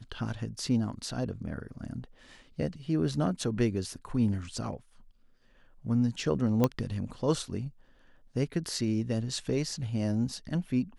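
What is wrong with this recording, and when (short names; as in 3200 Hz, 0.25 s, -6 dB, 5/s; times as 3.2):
6.64 pop -12 dBFS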